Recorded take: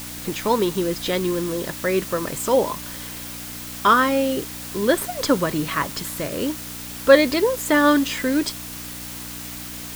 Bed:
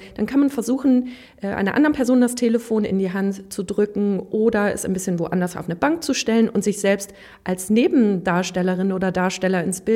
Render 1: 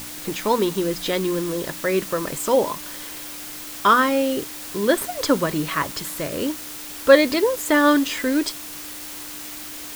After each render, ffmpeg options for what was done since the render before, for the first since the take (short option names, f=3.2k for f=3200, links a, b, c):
-af "bandreject=f=60:t=h:w=4,bandreject=f=120:t=h:w=4,bandreject=f=180:t=h:w=4,bandreject=f=240:t=h:w=4"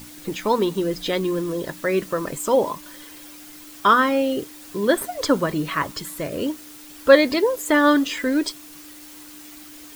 -af "afftdn=nr=9:nf=-35"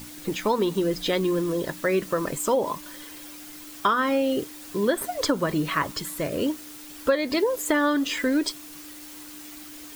-af "acompressor=threshold=-18dB:ratio=16"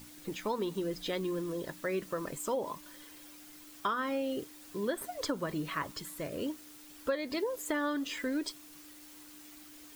-af "volume=-10.5dB"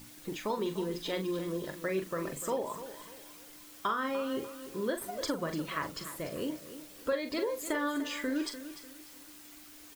-filter_complex "[0:a]asplit=2[a][b];[b]adelay=42,volume=-8dB[c];[a][c]amix=inputs=2:normalize=0,aecho=1:1:296|592|888|1184:0.237|0.083|0.029|0.0102"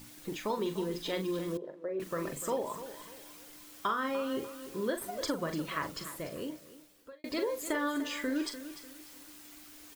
-filter_complex "[0:a]asettb=1/sr,asplit=3[a][b][c];[a]atrim=end=1.574[d];[b]atrim=start=1.57:end=2,asetpts=PTS-STARTPTS,afade=t=in:d=0.004:c=qsin,afade=t=out:st=0.426:d=0.004:c=qsin,bandpass=f=490:t=q:w=2[e];[c]atrim=start=1.996[f];[d][e]acrossfade=d=0.004:c1=hsin:c2=qsin[g];[g][f]acrossfade=d=0.004:c1=qsin:c2=hsin,asplit=2[h][i];[h]atrim=end=7.24,asetpts=PTS-STARTPTS,afade=t=out:st=6.04:d=1.2[j];[i]atrim=start=7.24,asetpts=PTS-STARTPTS,afade=t=in:d=0.004:c=hsin[k];[j][k]concat=n=2:v=0:a=1"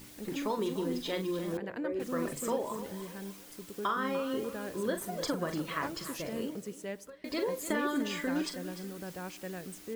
-filter_complex "[1:a]volume=-21.5dB[a];[0:a][a]amix=inputs=2:normalize=0"